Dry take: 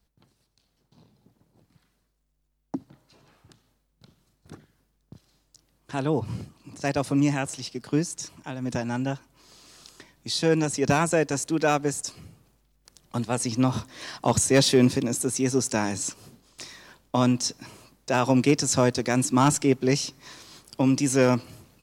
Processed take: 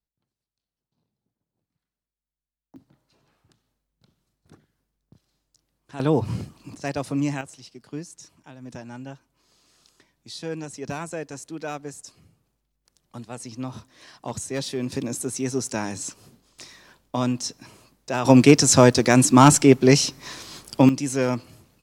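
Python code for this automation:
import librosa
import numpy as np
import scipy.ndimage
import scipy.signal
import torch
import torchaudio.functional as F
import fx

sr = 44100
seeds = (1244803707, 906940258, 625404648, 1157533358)

y = fx.gain(x, sr, db=fx.steps((0.0, -20.0), (2.76, -7.5), (6.0, 4.5), (6.75, -2.5), (7.41, -10.0), (14.92, -2.5), (18.25, 7.5), (20.89, -3.0)))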